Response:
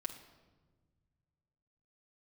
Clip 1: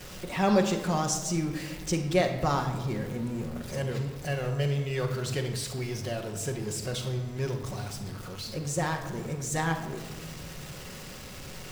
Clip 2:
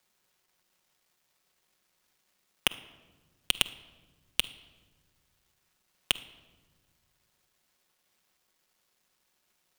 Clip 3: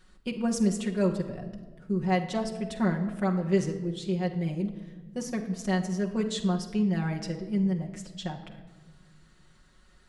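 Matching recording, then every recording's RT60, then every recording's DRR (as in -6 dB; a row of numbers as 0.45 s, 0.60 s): 3; 1.4 s, no single decay rate, 1.4 s; -9.0 dB, 8.5 dB, -0.5 dB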